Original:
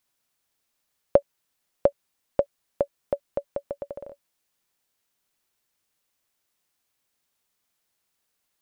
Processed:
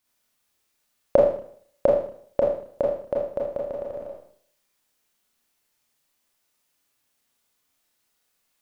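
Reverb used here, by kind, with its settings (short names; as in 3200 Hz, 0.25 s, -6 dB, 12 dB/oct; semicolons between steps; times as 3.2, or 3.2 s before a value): Schroeder reverb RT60 0.58 s, combs from 26 ms, DRR -3.5 dB; gain -1 dB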